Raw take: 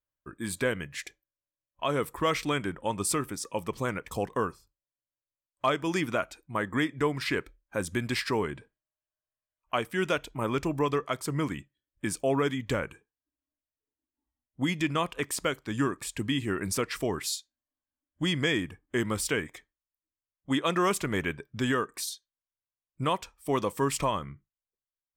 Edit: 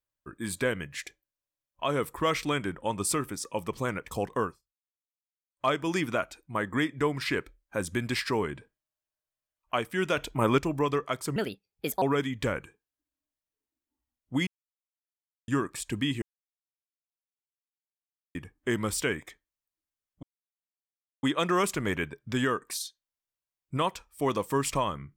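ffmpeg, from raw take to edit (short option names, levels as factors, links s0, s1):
-filter_complex "[0:a]asplit=12[s0][s1][s2][s3][s4][s5][s6][s7][s8][s9][s10][s11];[s0]atrim=end=4.62,asetpts=PTS-STARTPTS,afade=t=out:st=4.43:d=0.19:silence=0.0707946[s12];[s1]atrim=start=4.62:end=5.49,asetpts=PTS-STARTPTS,volume=0.0708[s13];[s2]atrim=start=5.49:end=10.172,asetpts=PTS-STARTPTS,afade=t=in:d=0.19:silence=0.0707946[s14];[s3]atrim=start=10.168:end=10.582,asetpts=PTS-STARTPTS,volume=1.88[s15];[s4]atrim=start=10.578:end=11.364[s16];[s5]atrim=start=11.36:end=12.29,asetpts=PTS-STARTPTS,asetrate=62181,aresample=44100,atrim=end_sample=29087,asetpts=PTS-STARTPTS[s17];[s6]atrim=start=12.286:end=14.74,asetpts=PTS-STARTPTS,afade=t=out:st=2.45:d=0.004:c=hsin[s18];[s7]atrim=start=14.74:end=15.75,asetpts=PTS-STARTPTS,volume=0[s19];[s8]atrim=start=15.75:end=16.49,asetpts=PTS-STARTPTS,afade=t=in:d=0.004:c=hsin,afade=t=out:st=0.736:d=0.004:c=hsin[s20];[s9]atrim=start=16.49:end=18.62,asetpts=PTS-STARTPTS,volume=0[s21];[s10]atrim=start=18.62:end=20.5,asetpts=PTS-STARTPTS,afade=t=in:d=0.004:c=hsin,afade=t=out:st=1.876:d=0.004:c=hsin,apad=pad_dur=1[s22];[s11]atrim=start=20.5,asetpts=PTS-STARTPTS,afade=t=in:d=0.004:c=hsin[s23];[s12][s13][s14]concat=n=3:v=0:a=1[s24];[s24][s15]acrossfade=d=0.004:c1=hsin:c2=hsin[s25];[s25][s16]acrossfade=d=0.004:c1=hsin:c2=hsin[s26];[s26][s17]acrossfade=d=0.004:c1=hsin:c2=hsin[s27];[s18][s19][s20][s21][s22][s23]concat=n=6:v=0:a=1[s28];[s27][s28]acrossfade=d=0.004:c1=hsin:c2=hsin"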